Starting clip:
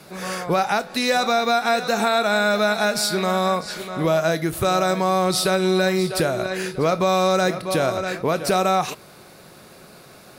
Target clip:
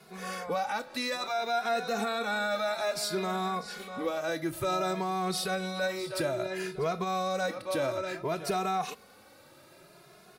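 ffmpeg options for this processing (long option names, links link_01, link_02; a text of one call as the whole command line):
ffmpeg -i in.wav -filter_complex "[0:a]bass=frequency=250:gain=-4,treble=frequency=4000:gain=-2,alimiter=limit=-13dB:level=0:latency=1:release=11,asplit=2[link_01][link_02];[link_02]adelay=2.4,afreqshift=0.58[link_03];[link_01][link_03]amix=inputs=2:normalize=1,volume=-6dB" out.wav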